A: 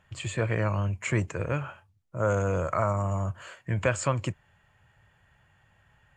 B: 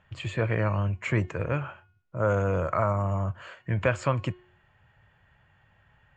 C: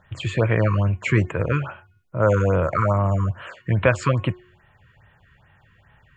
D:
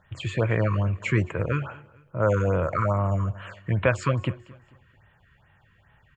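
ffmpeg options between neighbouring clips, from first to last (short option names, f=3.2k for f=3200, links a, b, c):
-af "lowpass=3.9k,bandreject=f=361.3:t=h:w=4,bandreject=f=722.6:t=h:w=4,bandreject=f=1.0839k:t=h:w=4,bandreject=f=1.4452k:t=h:w=4,bandreject=f=1.8065k:t=h:w=4,bandreject=f=2.1678k:t=h:w=4,bandreject=f=2.5291k:t=h:w=4,bandreject=f=2.8904k:t=h:w=4,bandreject=f=3.2517k:t=h:w=4,bandreject=f=3.613k:t=h:w=4,bandreject=f=3.9743k:t=h:w=4,bandreject=f=4.3356k:t=h:w=4,volume=1dB"
-af "afftfilt=real='re*(1-between(b*sr/1024,650*pow(6000/650,0.5+0.5*sin(2*PI*2.4*pts/sr))/1.41,650*pow(6000/650,0.5+0.5*sin(2*PI*2.4*pts/sr))*1.41))':imag='im*(1-between(b*sr/1024,650*pow(6000/650,0.5+0.5*sin(2*PI*2.4*pts/sr))/1.41,650*pow(6000/650,0.5+0.5*sin(2*PI*2.4*pts/sr))*1.41))':win_size=1024:overlap=0.75,volume=7dB"
-af "aecho=1:1:221|442|663:0.0841|0.0328|0.0128,volume=-4dB"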